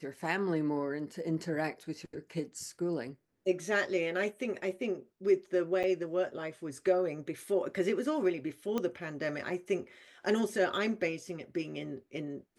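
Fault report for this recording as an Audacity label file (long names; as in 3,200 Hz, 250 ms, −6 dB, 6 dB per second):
5.830000	5.840000	drop-out 7.6 ms
8.780000	8.780000	click −19 dBFS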